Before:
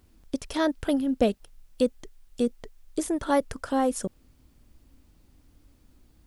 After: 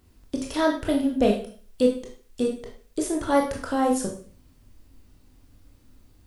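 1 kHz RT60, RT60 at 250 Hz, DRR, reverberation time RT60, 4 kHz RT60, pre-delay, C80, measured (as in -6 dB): 0.45 s, 0.55 s, 0.0 dB, 0.45 s, 0.40 s, 19 ms, 11.0 dB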